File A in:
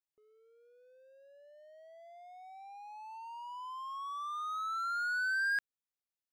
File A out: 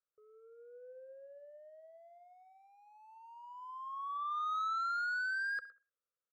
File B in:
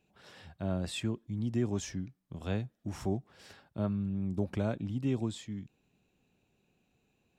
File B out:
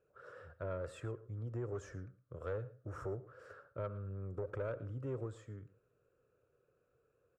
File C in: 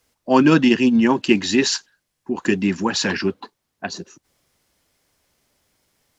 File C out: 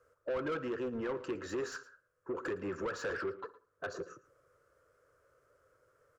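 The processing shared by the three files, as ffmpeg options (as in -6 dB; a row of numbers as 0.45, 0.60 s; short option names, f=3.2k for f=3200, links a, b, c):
-filter_complex "[0:a]firequalizer=gain_entry='entry(120,0);entry(200,-21);entry(500,3);entry(800,-24);entry(1300,0);entry(2000,-21);entry(3600,-28);entry(7100,-16)':delay=0.05:min_phase=1,asplit=2[a][b];[b]adelay=64,lowpass=f=3k:p=1,volume=-21.5dB,asplit=2[c][d];[d]adelay=64,lowpass=f=3k:p=1,volume=0.44,asplit=2[e][f];[f]adelay=64,lowpass=f=3k:p=1,volume=0.44[g];[c][e][g]amix=inputs=3:normalize=0[h];[a][h]amix=inputs=2:normalize=0,acompressor=threshold=-37dB:ratio=3,asplit=2[i][j];[j]highpass=f=720:p=1,volume=22dB,asoftclip=type=tanh:threshold=-23.5dB[k];[i][k]amix=inputs=2:normalize=0,lowpass=f=1.9k:p=1,volume=-6dB,asplit=2[l][m];[m]aecho=0:1:112:0.119[n];[l][n]amix=inputs=2:normalize=0,volume=-4dB"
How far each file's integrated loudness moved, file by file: -0.5, -8.5, -20.5 LU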